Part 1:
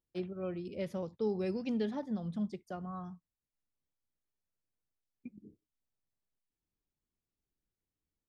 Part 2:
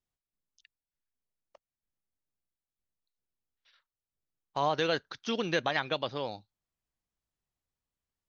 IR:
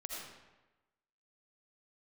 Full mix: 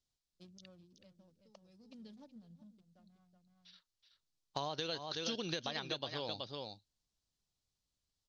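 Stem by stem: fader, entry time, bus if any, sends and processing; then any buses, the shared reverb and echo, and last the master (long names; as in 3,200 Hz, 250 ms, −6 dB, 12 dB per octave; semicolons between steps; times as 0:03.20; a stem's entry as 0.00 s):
−6.5 dB, 0.25 s, no send, echo send −21.5 dB, adaptive Wiener filter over 41 samples; downward compressor, threshold −36 dBFS, peak gain reduction 7.5 dB; parametric band 390 Hz −13.5 dB 0.27 octaves; automatic ducking −20 dB, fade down 1.60 s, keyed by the second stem
+1.5 dB, 0.00 s, no send, echo send −9 dB, low-pass filter 5,800 Hz 12 dB per octave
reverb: not used
echo: single-tap delay 375 ms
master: drawn EQ curve 110 Hz 0 dB, 2,100 Hz −6 dB, 4,300 Hz +9 dB; downward compressor 16 to 1, threshold −35 dBFS, peak gain reduction 13 dB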